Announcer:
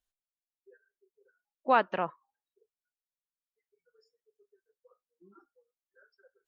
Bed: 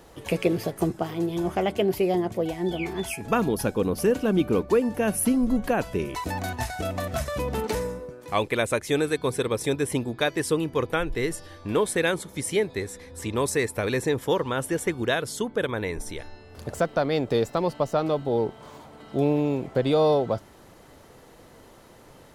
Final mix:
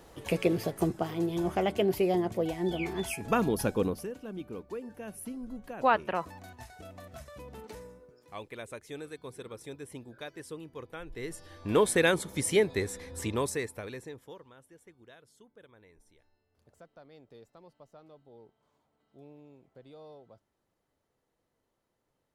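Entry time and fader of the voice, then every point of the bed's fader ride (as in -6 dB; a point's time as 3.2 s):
4.15 s, -0.5 dB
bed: 3.86 s -3.5 dB
4.09 s -18 dB
10.94 s -18 dB
11.79 s -0.5 dB
13.18 s -0.5 dB
14.62 s -30 dB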